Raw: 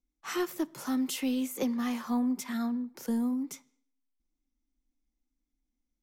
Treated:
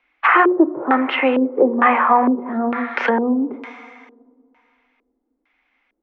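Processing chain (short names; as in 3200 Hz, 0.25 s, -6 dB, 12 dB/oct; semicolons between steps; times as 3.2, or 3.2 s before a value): LPF 3800 Hz 12 dB/oct; notches 60/120/180/240/300/360 Hz; plate-style reverb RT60 2.4 s, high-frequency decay 0.85×, DRR 14.5 dB; LFO low-pass square 1.1 Hz 380–2400 Hz; three-band isolator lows -20 dB, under 500 Hz, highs -13 dB, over 2400 Hz; treble ducked by the level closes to 990 Hz, closed at -40 dBFS; tilt +3 dB/oct; maximiser +33 dB; gain -2.5 dB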